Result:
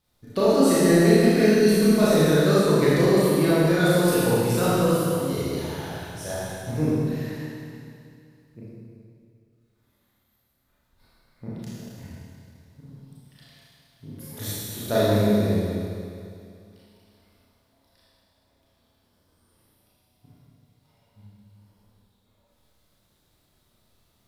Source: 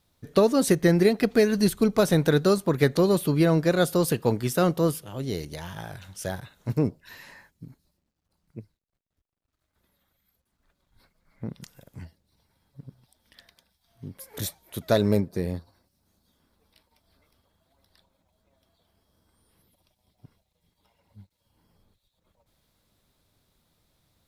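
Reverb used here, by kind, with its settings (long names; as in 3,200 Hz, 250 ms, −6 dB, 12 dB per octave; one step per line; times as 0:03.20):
four-comb reverb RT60 2.4 s, combs from 26 ms, DRR −9.5 dB
level −6.5 dB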